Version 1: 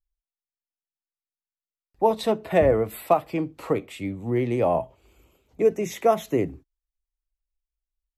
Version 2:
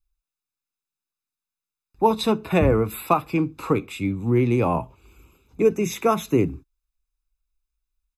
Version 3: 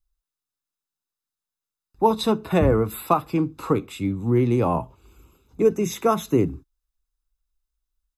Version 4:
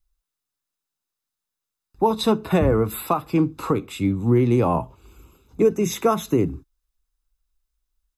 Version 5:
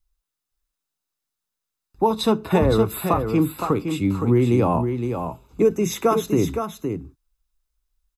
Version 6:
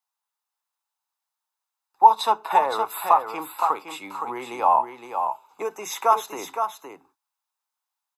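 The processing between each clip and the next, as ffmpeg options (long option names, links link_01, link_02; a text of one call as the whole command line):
ffmpeg -i in.wav -af "aecho=1:1:0.8:0.66,volume=3dB" out.wav
ffmpeg -i in.wav -af "equalizer=frequency=2400:width_type=o:width=0.27:gain=-9.5" out.wav
ffmpeg -i in.wav -af "alimiter=limit=-12dB:level=0:latency=1:release=277,volume=3.5dB" out.wav
ffmpeg -i in.wav -af "aecho=1:1:515:0.447" out.wav
ffmpeg -i in.wav -af "highpass=frequency=870:width_type=q:width=4.5,volume=-2.5dB" out.wav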